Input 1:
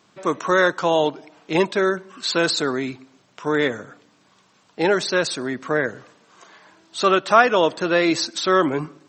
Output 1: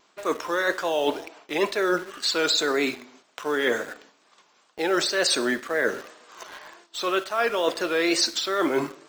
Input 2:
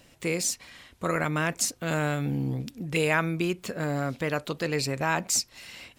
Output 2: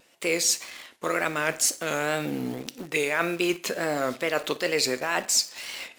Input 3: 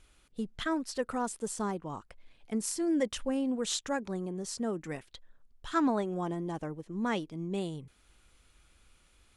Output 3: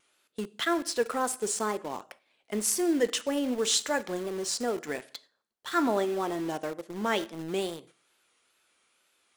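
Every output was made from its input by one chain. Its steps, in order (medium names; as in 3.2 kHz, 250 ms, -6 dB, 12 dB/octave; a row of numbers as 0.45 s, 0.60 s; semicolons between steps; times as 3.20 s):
high-pass 390 Hz 12 dB/octave; reverse; compression 20:1, threshold -27 dBFS; reverse; wow and flutter 110 cents; dynamic bell 970 Hz, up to -4 dB, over -48 dBFS, Q 1.4; plate-style reverb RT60 0.58 s, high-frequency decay 0.9×, pre-delay 0 ms, DRR 12 dB; in parallel at -7.5 dB: bit crusher 7-bit; on the sum: gate -57 dBFS, range -7 dB; trim +5 dB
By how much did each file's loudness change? -4.0 LU, +2.0 LU, +4.0 LU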